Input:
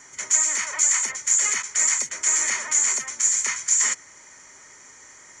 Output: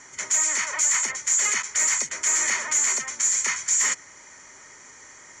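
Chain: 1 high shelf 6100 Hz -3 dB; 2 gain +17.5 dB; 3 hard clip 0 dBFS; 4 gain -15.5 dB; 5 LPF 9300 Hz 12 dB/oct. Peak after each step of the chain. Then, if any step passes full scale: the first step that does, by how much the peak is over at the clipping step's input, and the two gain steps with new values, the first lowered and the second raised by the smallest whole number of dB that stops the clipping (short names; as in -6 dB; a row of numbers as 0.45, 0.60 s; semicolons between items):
-7.5, +10.0, 0.0, -15.5, -14.0 dBFS; step 2, 10.0 dB; step 2 +7.5 dB, step 4 -5.5 dB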